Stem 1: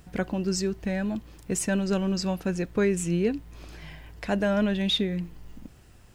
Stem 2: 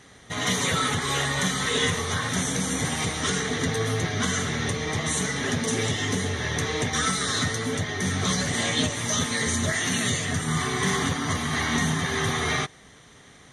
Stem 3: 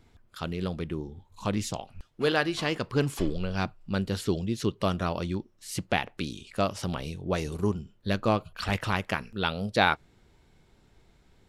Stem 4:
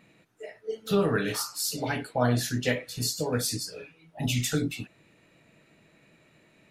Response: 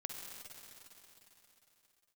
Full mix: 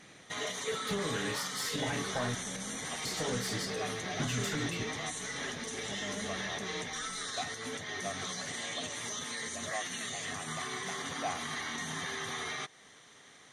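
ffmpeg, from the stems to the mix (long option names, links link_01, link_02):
-filter_complex "[0:a]adelay=1600,volume=-19dB[link_01];[1:a]highpass=frequency=410:poles=1,highshelf=frequency=4200:gain=6,alimiter=limit=-22.5dB:level=0:latency=1:release=200,volume=-5dB[link_02];[2:a]asplit=3[link_03][link_04][link_05];[link_03]bandpass=frequency=730:width_type=q:width=8,volume=0dB[link_06];[link_04]bandpass=frequency=1090:width_type=q:width=8,volume=-6dB[link_07];[link_05]bandpass=frequency=2440:width_type=q:width=8,volume=-9dB[link_08];[link_06][link_07][link_08]amix=inputs=3:normalize=0,adelay=1450,volume=-7dB[link_09];[3:a]acompressor=threshold=-31dB:ratio=6,asoftclip=type=tanh:threshold=-30dB,volume=0dB,asplit=3[link_10][link_11][link_12];[link_10]atrim=end=2.35,asetpts=PTS-STARTPTS,afade=type=out:start_time=2.346:duration=0.004:curve=hsin[link_13];[link_11]atrim=start=2.35:end=3.05,asetpts=PTS-STARTPTS,volume=0[link_14];[link_12]atrim=start=3.05,asetpts=PTS-STARTPTS,afade=type=in:duration=0.004:curve=hsin[link_15];[link_13][link_14][link_15]concat=n=3:v=0:a=1,asplit=2[link_16][link_17];[link_17]volume=-12.5dB[link_18];[4:a]atrim=start_sample=2205[link_19];[link_18][link_19]afir=irnorm=-1:irlink=0[link_20];[link_01][link_02][link_09][link_16][link_20]amix=inputs=5:normalize=0,highshelf=frequency=9900:gain=-11.5"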